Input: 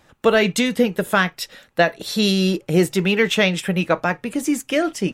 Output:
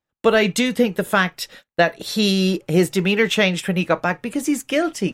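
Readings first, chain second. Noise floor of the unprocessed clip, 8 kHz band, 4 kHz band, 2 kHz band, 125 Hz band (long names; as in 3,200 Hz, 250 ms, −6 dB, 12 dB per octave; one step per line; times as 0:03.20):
−58 dBFS, 0.0 dB, 0.0 dB, 0.0 dB, 0.0 dB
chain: noise gate −41 dBFS, range −30 dB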